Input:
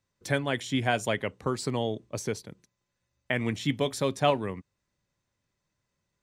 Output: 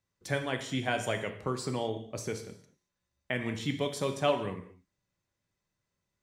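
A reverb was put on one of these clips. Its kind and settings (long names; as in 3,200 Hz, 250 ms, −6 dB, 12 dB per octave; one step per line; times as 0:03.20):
reverb whose tail is shaped and stops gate 260 ms falling, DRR 5.5 dB
level −4.5 dB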